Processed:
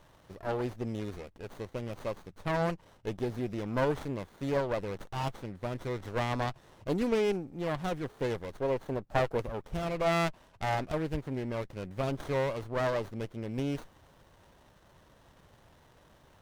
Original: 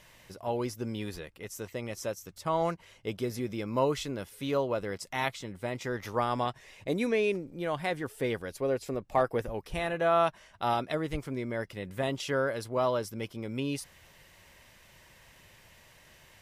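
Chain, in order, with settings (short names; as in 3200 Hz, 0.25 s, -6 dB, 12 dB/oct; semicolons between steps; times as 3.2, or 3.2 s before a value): self-modulated delay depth 0.088 ms; running maximum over 17 samples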